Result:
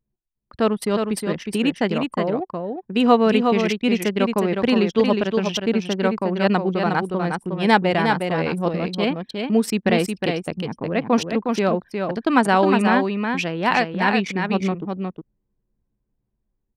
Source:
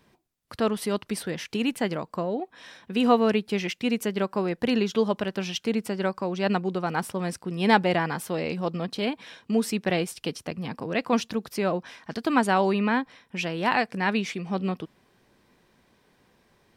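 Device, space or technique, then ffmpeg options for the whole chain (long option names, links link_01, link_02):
voice memo with heavy noise removal: -filter_complex "[0:a]asplit=3[link_01][link_02][link_03];[link_01]afade=type=out:start_time=10.5:duration=0.02[link_04];[link_02]highshelf=frequency=2400:gain=-9.5,afade=type=in:start_time=10.5:duration=0.02,afade=type=out:start_time=11.15:duration=0.02[link_05];[link_03]afade=type=in:start_time=11.15:duration=0.02[link_06];[link_04][link_05][link_06]amix=inputs=3:normalize=0,anlmdn=10,dynaudnorm=framelen=170:gausssize=5:maxgain=4dB,aecho=1:1:361:0.562,volume=1.5dB"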